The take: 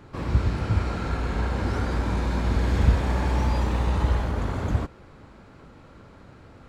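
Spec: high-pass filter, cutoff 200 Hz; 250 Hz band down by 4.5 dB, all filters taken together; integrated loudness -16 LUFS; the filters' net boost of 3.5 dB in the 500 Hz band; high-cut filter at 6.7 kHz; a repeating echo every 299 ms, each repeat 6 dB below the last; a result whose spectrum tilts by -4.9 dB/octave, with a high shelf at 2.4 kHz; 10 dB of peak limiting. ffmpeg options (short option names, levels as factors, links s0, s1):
-af "highpass=200,lowpass=6700,equalizer=f=250:t=o:g=-5,equalizer=f=500:t=o:g=6,highshelf=f=2400:g=-4,alimiter=level_in=1.5:limit=0.0631:level=0:latency=1,volume=0.668,aecho=1:1:299|598|897|1196|1495|1794:0.501|0.251|0.125|0.0626|0.0313|0.0157,volume=8.91"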